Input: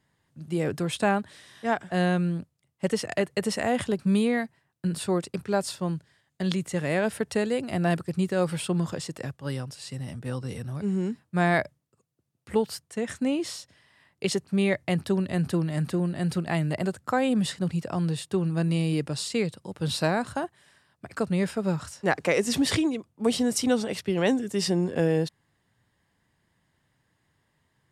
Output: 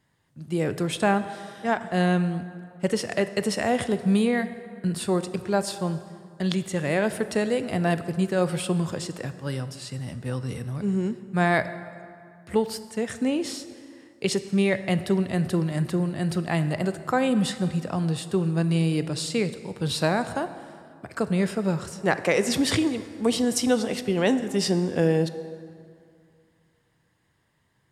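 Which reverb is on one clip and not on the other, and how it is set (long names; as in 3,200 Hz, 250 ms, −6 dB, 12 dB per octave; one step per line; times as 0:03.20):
dense smooth reverb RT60 2.4 s, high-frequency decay 0.6×, DRR 11 dB
level +1.5 dB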